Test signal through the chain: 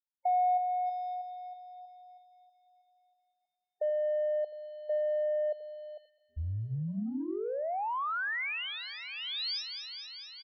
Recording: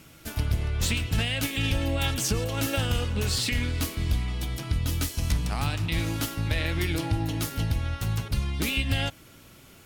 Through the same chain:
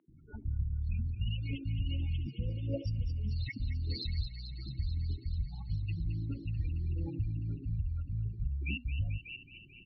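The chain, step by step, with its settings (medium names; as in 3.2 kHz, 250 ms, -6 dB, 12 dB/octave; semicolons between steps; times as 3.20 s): resonances exaggerated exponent 3; hum notches 60/120/180/240/300 Hz; in parallel at -8 dB: saturation -28 dBFS; on the sum: loudest bins only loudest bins 16; on a send: feedback echo behind a high-pass 219 ms, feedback 76%, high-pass 2.6 kHz, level -7 dB; on the sum: resampled via 11.025 kHz; three bands offset in time mids, lows, highs 80/590 ms, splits 380/3100 Hz; trim -8 dB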